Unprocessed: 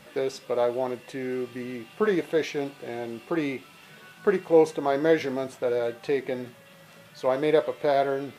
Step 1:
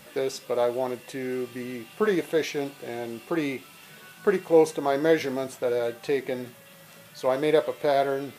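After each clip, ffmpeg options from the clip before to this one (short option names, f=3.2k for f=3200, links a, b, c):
-af "highshelf=f=6.9k:g=10.5"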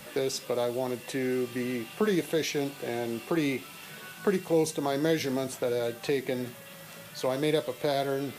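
-filter_complex "[0:a]acrossover=split=260|3000[a][b][c];[b]acompressor=threshold=-34dB:ratio=3[d];[a][d][c]amix=inputs=3:normalize=0,volume=3.5dB"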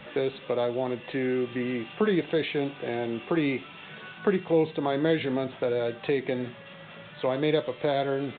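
-af "aresample=8000,aresample=44100,volume=2dB"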